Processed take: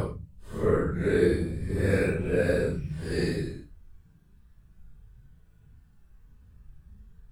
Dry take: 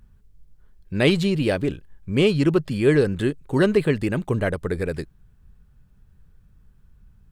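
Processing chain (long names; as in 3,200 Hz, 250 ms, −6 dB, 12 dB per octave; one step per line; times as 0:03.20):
extreme stretch with random phases 7.4×, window 0.05 s, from 0:04.56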